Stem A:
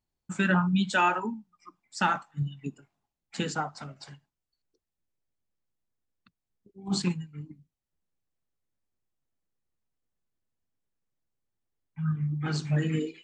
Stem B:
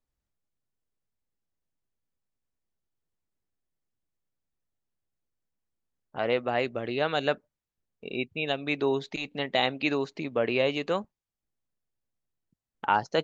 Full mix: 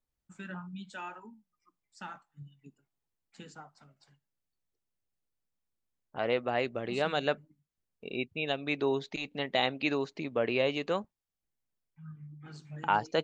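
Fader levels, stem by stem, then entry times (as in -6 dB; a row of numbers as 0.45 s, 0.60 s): -18.0 dB, -3.0 dB; 0.00 s, 0.00 s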